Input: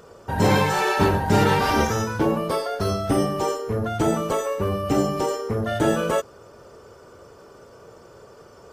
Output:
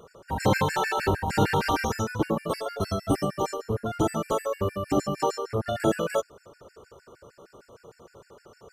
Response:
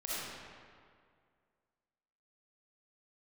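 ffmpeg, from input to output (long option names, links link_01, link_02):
-filter_complex "[0:a]asettb=1/sr,asplit=3[link_01][link_02][link_03];[link_01]atrim=end=5.224[link_04];[link_02]atrim=start=5.22:end=5.71,asetpts=PTS-STARTPTS,afade=type=in:duration=0.004:curve=qsin,afade=type=out:start_time=0.486:duration=0.004:curve=qsin,equalizer=frequency=1000:width_type=o:width=1:gain=6,equalizer=frequency=2000:width_type=o:width=1:gain=-3,equalizer=frequency=4000:width_type=o:width=1:gain=5[link_05];[link_03]atrim=start=5.706[link_06];[link_04][link_05]acrossfade=duration=0.004:curve1=hsin:curve2=qsin[link_07];[link_07][link_06]acrossfade=duration=0.004:curve1=qsin:curve2=hsin,afftfilt=real='re*gt(sin(2*PI*6.5*pts/sr)*(1-2*mod(floor(b*sr/1024/1400),2)),0)':imag='im*gt(sin(2*PI*6.5*pts/sr)*(1-2*mod(floor(b*sr/1024/1400),2)),0)':win_size=1024:overlap=0.75,volume=-1.5dB"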